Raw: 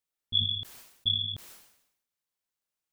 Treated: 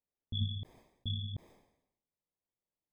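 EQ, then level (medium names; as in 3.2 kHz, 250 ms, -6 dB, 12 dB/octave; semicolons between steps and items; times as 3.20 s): boxcar filter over 31 samples; +3.0 dB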